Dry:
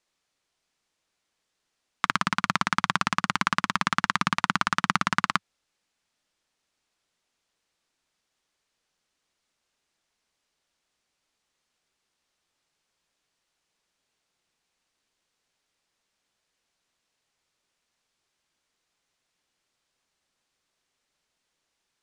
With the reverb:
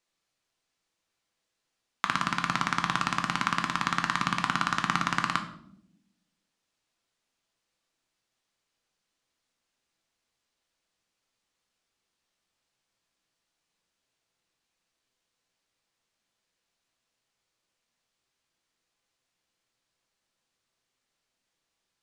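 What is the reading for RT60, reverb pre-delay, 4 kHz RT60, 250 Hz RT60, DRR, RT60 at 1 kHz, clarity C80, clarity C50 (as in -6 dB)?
0.75 s, 6 ms, 0.50 s, 1.3 s, 5.0 dB, 0.60 s, 13.0 dB, 10.5 dB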